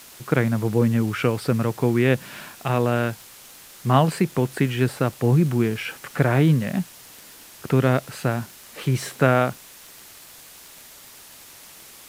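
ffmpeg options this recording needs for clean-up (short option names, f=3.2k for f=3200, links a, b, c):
-af "adeclick=t=4,afwtdn=0.0063"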